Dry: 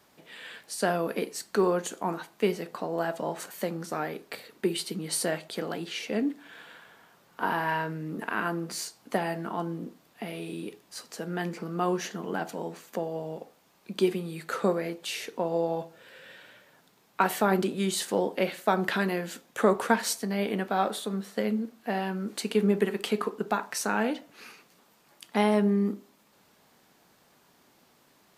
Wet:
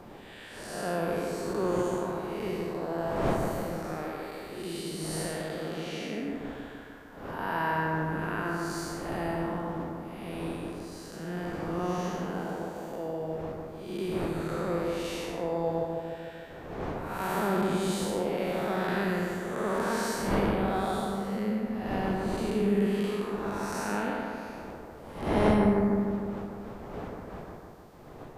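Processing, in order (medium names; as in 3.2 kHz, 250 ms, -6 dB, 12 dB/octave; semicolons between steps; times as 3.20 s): spectral blur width 285 ms; wind noise 600 Hz -41 dBFS; bucket-brigade echo 151 ms, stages 2048, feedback 64%, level -4 dB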